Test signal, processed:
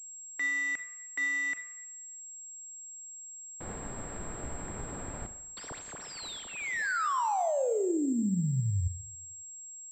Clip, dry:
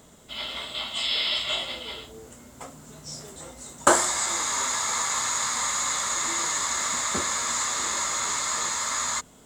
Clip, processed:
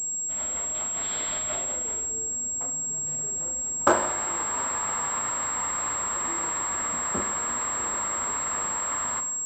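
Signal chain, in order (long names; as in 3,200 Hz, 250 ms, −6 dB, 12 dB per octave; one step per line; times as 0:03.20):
running median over 15 samples
four-comb reverb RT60 0.88 s, combs from 30 ms, DRR 8.5 dB
switching amplifier with a slow clock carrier 7,600 Hz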